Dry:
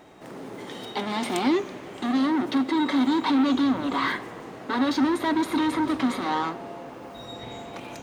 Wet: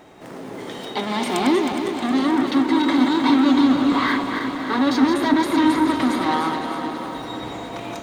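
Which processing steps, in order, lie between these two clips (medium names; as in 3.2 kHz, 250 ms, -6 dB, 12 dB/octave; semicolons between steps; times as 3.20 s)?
backward echo that repeats 157 ms, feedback 72%, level -6 dB; echo whose repeats swap between lows and highs 254 ms, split 940 Hz, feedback 84%, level -13.5 dB; trim +3.5 dB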